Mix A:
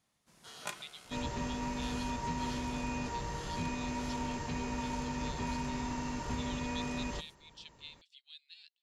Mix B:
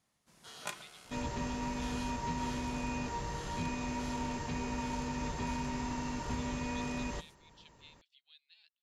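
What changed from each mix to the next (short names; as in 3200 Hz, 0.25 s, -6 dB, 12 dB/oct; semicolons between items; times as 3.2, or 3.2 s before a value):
speech: add tilt -4.5 dB/oct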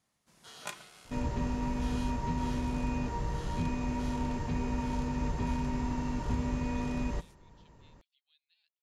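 speech -10.5 dB; second sound: add tilt -2 dB/oct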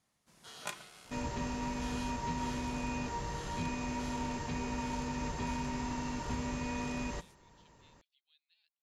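second sound: add tilt +2 dB/oct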